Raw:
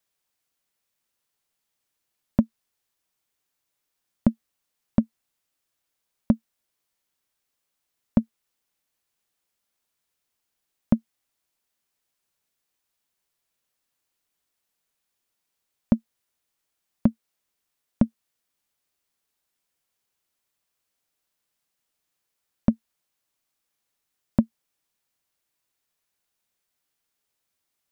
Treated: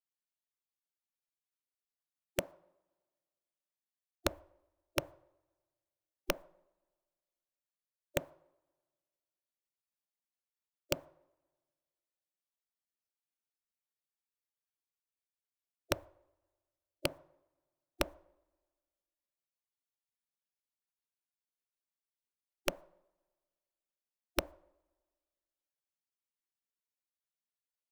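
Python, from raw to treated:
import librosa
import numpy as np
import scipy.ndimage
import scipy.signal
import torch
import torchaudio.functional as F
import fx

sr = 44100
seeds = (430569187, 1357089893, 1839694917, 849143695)

y = fx.spec_gate(x, sr, threshold_db=-15, keep='weak')
y = fx.rev_double_slope(y, sr, seeds[0], early_s=0.59, late_s=1.8, knee_db=-22, drr_db=15.5)
y = (np.mod(10.0 ** (18.5 / 20.0) * y + 1.0, 2.0) - 1.0) / 10.0 ** (18.5 / 20.0)
y = y * 10.0 ** (1.5 / 20.0)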